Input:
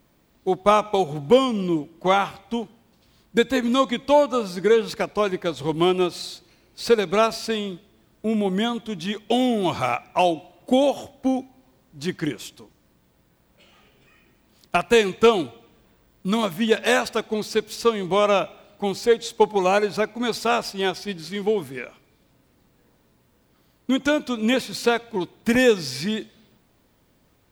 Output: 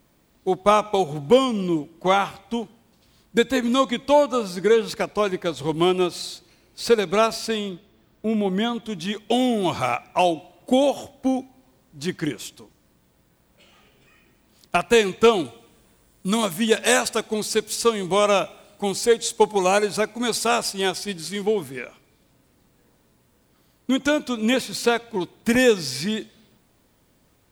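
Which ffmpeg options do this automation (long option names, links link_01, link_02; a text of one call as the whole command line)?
ffmpeg -i in.wav -af "asetnsamples=nb_out_samples=441:pad=0,asendcmd='7.69 equalizer g -4.5;8.83 equalizer g 4;15.45 equalizer g 13;21.42 equalizer g 5',equalizer=frequency=9000:width_type=o:width=1.1:gain=4" out.wav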